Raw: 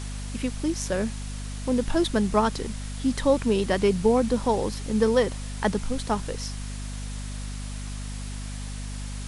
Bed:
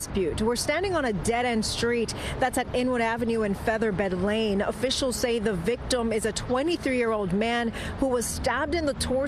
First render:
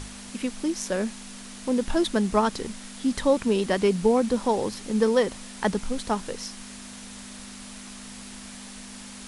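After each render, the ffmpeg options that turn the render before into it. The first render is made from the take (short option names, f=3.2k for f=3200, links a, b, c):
-af "bandreject=f=50:t=h:w=6,bandreject=f=100:t=h:w=6,bandreject=f=150:t=h:w=6"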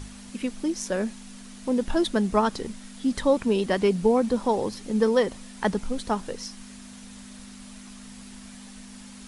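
-af "afftdn=nr=6:nf=-42"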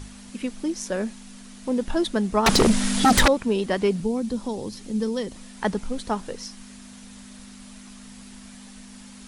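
-filter_complex "[0:a]asettb=1/sr,asplit=3[a][b][c];[a]atrim=end=2.464[d];[b]atrim=start=2.46:end=3.28,asetpts=PTS-STARTPTS,afade=t=in:d=0.004:c=qsin,afade=t=out:st=0.816:d=0.004:c=qsin,aeval=exprs='0.266*sin(PI/2*6.31*val(0)/0.266)':c=same[e];[c]atrim=start=3.276[f];[d][e]acrossfade=d=0.004:c1=hsin:c2=qsin[g];[g][f]acrossfade=d=0.004:c1=qsin:c2=hsin,asettb=1/sr,asplit=3[h][i][j];[h]atrim=end=4.004[k];[i]atrim=start=4:end=5.36,asetpts=PTS-STARTPTS,afade=t=in:d=0.004:c=qsin,afade=t=out:st=1.356:d=0.004:c=qsin,acrossover=split=340|3000[l][m][n];[m]acompressor=threshold=-54dB:ratio=1.5:attack=3.2:release=140:knee=2.83:detection=peak[o];[l][o][n]amix=inputs=3:normalize=0[p];[j]atrim=start=5.356[q];[k][p]acrossfade=d=0.004:c1=hsin:c2=qsin[r];[r][q]acrossfade=d=0.004:c1=qsin:c2=hsin"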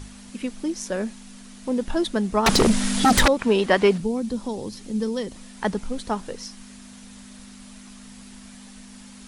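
-filter_complex "[0:a]asettb=1/sr,asplit=3[a][b][c];[a]atrim=end=3.394[d];[b]atrim=start=3.39:end=3.98,asetpts=PTS-STARTPTS,afade=t=in:d=0.004:c=qsin,afade=t=out:st=0.586:d=0.004:c=qsin,equalizer=f=1.4k:w=0.32:g=9[e];[c]atrim=start=3.976[f];[d][e]acrossfade=d=0.004:c1=hsin:c2=qsin[g];[g][f]acrossfade=d=0.004:c1=qsin:c2=hsin"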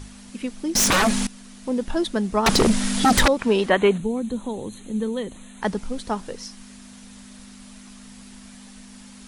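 -filter_complex "[0:a]asettb=1/sr,asplit=3[a][b][c];[a]atrim=end=0.754[d];[b]atrim=start=0.75:end=1.27,asetpts=PTS-STARTPTS,afade=t=in:d=0.004:c=qsin,afade=t=out:st=0.516:d=0.004:c=qsin,aeval=exprs='0.188*sin(PI/2*7.08*val(0)/0.188)':c=same[e];[c]atrim=start=1.266[f];[d][e]acrossfade=d=0.004:c1=hsin:c2=qsin[g];[g][f]acrossfade=d=0.004:c1=qsin:c2=hsin,asplit=3[h][i][j];[h]afade=t=out:st=3.69:d=0.02[k];[i]asuperstop=centerf=5100:order=20:qfactor=2.8,afade=t=in:st=3.69:d=0.02,afade=t=out:st=5.61:d=0.02[l];[j]afade=t=in:st=5.61:d=0.02[m];[k][l][m]amix=inputs=3:normalize=0"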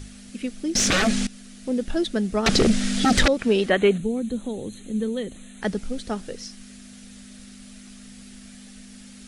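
-filter_complex "[0:a]acrossover=split=8500[a][b];[b]acompressor=threshold=-51dB:ratio=4:attack=1:release=60[c];[a][c]amix=inputs=2:normalize=0,equalizer=f=970:t=o:w=0.48:g=-13.5"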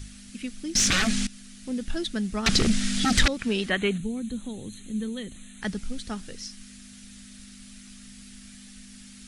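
-af "equalizer=f=520:t=o:w=1.8:g=-11.5"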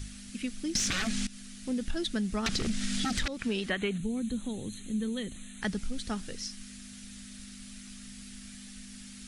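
-af "alimiter=limit=-15dB:level=0:latency=1:release=391,acompressor=threshold=-27dB:ratio=6"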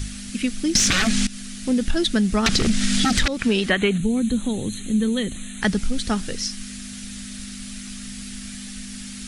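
-af "volume=11.5dB"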